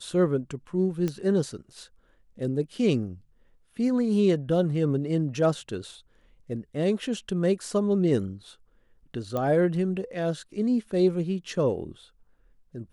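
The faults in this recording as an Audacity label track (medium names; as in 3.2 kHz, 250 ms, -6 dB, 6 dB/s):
1.080000	1.080000	pop -17 dBFS
9.370000	9.370000	pop -17 dBFS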